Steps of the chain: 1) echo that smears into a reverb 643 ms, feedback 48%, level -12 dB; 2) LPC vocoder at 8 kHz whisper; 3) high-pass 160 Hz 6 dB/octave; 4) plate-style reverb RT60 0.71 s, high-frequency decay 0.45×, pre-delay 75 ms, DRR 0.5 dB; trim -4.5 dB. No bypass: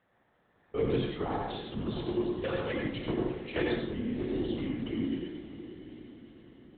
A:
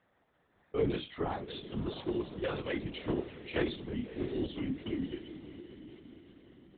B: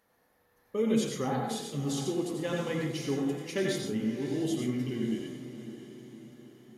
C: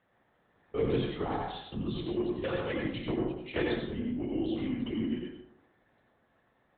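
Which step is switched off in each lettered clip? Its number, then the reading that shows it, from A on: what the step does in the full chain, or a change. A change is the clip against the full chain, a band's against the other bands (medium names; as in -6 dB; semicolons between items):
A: 4, crest factor change +3.0 dB; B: 2, 2 kHz band -2.0 dB; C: 1, momentary loudness spread change -9 LU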